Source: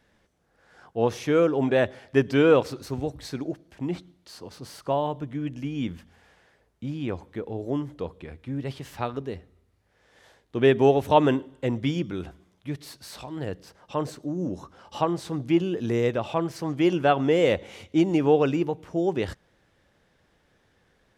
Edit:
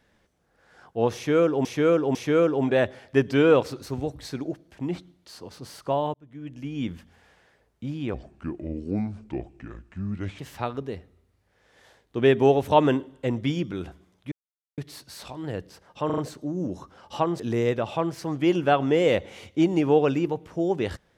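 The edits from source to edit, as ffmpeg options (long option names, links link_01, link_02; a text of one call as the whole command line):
ffmpeg -i in.wav -filter_complex "[0:a]asplit=11[link_01][link_02][link_03][link_04][link_05][link_06][link_07][link_08][link_09][link_10][link_11];[link_01]atrim=end=1.652[link_12];[link_02]atrim=start=1.148:end=1.652[link_13];[link_03]atrim=start=1.148:end=5.14,asetpts=PTS-STARTPTS,afade=type=out:start_time=3.988:duration=0.004:curve=hsin[link_14];[link_04]atrim=start=5.14:end=7.144,asetpts=PTS-STARTPTS,afade=type=in:duration=0.71[link_15];[link_05]atrim=start=7.14:end=8.78,asetpts=PTS-STARTPTS,asetrate=32193,aresample=44100[link_16];[link_06]atrim=start=8.776:end=12.71,asetpts=PTS-STARTPTS,afade=type=out:start_time=3.93:duration=0.004:curve=hsin,apad=pad_dur=0.46[link_17];[link_07]atrim=start=12.71:end=14.032,asetpts=PTS-STARTPTS,afade=type=in:duration=0.004:curve=hsin[link_18];[link_08]atrim=start=13.988:end=14.032[link_19];[link_09]atrim=start=13.988:end=14.032[link_20];[link_10]atrim=start=13.988:end=15.212[link_21];[link_11]atrim=start=15.768[link_22];[link_12][link_13]acrossfade=duration=0.004:curve1=hsin:curve2=hsin[link_23];[link_14][link_15]concat=n=2:v=0:a=1[link_24];[link_23][link_24]acrossfade=duration=0.004:curve1=hsin:curve2=hsin[link_25];[link_25][link_16]acrossfade=duration=0.004:curve1=hsin:curve2=hsin[link_26];[link_17][link_18]concat=n=2:v=0:a=1[link_27];[link_26][link_27]acrossfade=duration=0.004:curve1=hsin:curve2=hsin[link_28];[link_28][link_19]acrossfade=duration=0.004:curve1=hsin:curve2=hsin[link_29];[link_29][link_20]acrossfade=duration=0.004:curve1=hsin:curve2=hsin[link_30];[link_30][link_21]acrossfade=duration=0.004:curve1=hsin:curve2=hsin[link_31];[link_31][link_22]acrossfade=duration=0.004:curve1=hsin:curve2=hsin" out.wav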